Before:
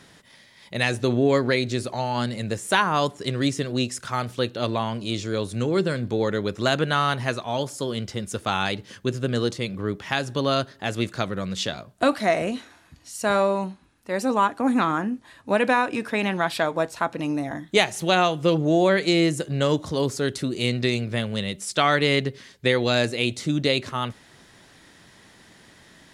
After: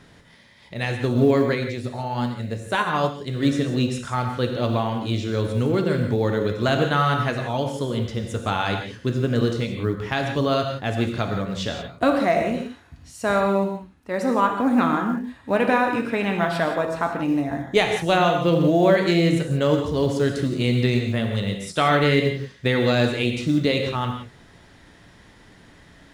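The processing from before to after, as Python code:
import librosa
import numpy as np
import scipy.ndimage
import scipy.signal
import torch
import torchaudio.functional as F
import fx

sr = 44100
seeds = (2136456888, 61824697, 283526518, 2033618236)

y = fx.low_shelf(x, sr, hz=83.0, db=12.0)
y = fx.rev_gated(y, sr, seeds[0], gate_ms=200, shape='flat', drr_db=3.0)
y = fx.quant_float(y, sr, bits=4)
y = fx.high_shelf(y, sr, hz=4200.0, db=-9.0)
y = fx.upward_expand(y, sr, threshold_db=-26.0, expansion=1.5, at=(0.74, 3.43))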